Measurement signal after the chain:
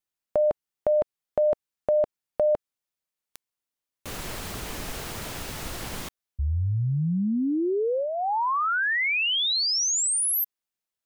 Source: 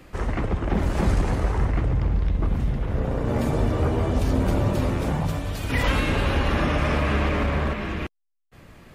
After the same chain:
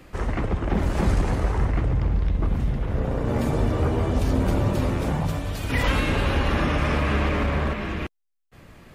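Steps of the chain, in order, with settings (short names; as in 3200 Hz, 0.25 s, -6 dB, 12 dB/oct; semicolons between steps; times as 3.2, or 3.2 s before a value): dynamic EQ 640 Hz, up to -5 dB, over -32 dBFS, Q 4.3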